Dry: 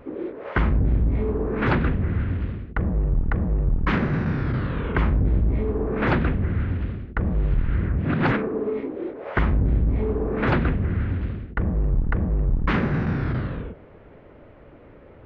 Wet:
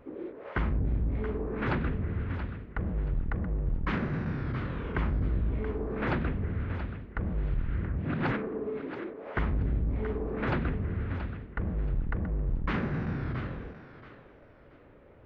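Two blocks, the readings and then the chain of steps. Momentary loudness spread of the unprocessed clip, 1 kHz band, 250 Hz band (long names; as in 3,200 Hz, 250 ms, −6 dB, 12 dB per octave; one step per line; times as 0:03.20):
7 LU, −8.0 dB, −8.5 dB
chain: feedback echo with a high-pass in the loop 678 ms, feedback 29%, level −10 dB
level −8.5 dB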